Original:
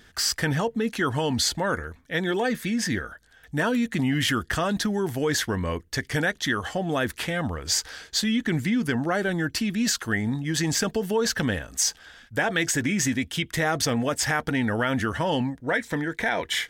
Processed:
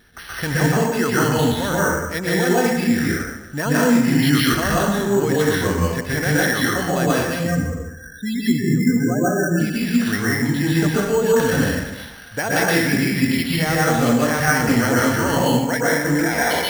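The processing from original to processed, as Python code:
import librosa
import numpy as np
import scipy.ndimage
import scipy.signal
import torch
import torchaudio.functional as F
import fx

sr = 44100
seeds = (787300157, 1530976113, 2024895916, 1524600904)

y = fx.spec_topn(x, sr, count=8, at=(7.21, 9.6))
y = fx.rev_plate(y, sr, seeds[0], rt60_s=1.0, hf_ratio=0.8, predelay_ms=110, drr_db=-6.5)
y = np.repeat(scipy.signal.resample_poly(y, 1, 6), 6)[:len(y)]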